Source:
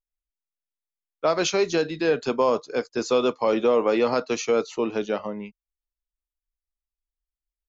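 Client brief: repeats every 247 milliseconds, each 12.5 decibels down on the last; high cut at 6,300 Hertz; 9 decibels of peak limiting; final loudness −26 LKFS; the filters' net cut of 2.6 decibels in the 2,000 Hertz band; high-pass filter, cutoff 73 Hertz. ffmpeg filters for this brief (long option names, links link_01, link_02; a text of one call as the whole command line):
ffmpeg -i in.wav -af "highpass=73,lowpass=6300,equalizer=frequency=2000:width_type=o:gain=-3.5,alimiter=limit=-19dB:level=0:latency=1,aecho=1:1:247|494|741:0.237|0.0569|0.0137,volume=3dB" out.wav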